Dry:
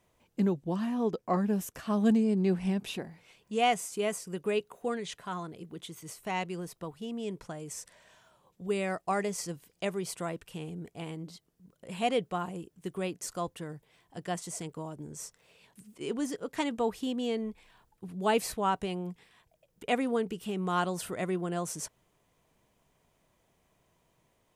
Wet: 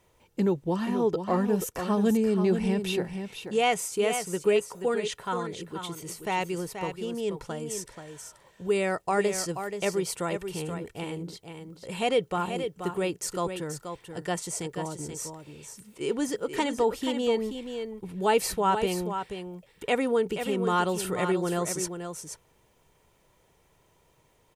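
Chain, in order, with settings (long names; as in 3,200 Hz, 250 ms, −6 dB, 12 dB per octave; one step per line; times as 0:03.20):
comb filter 2.2 ms, depth 36%
in parallel at −1.5 dB: brickwall limiter −24.5 dBFS, peak gain reduction 10 dB
on the sum: single-tap delay 481 ms −8 dB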